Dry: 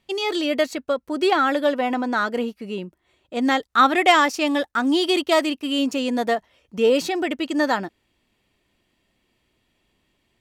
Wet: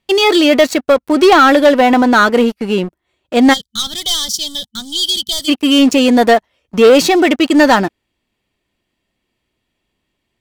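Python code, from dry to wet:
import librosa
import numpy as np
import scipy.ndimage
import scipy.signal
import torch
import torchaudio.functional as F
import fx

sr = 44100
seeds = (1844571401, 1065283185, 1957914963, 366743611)

y = fx.leveller(x, sr, passes=3)
y = fx.spec_box(y, sr, start_s=3.54, length_s=1.95, low_hz=220.0, high_hz=3000.0, gain_db=-26)
y = y * librosa.db_to_amplitude(3.0)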